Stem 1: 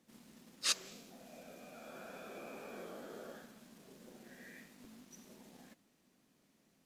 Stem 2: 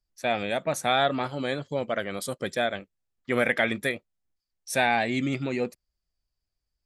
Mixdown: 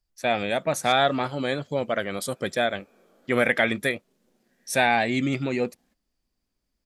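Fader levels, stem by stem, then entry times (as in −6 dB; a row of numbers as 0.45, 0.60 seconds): −12.0, +2.5 decibels; 0.20, 0.00 seconds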